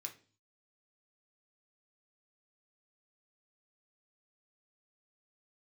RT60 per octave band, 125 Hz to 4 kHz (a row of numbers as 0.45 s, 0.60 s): 0.70 s, 0.55 s, 0.45 s, 0.35 s, 0.40 s, 0.45 s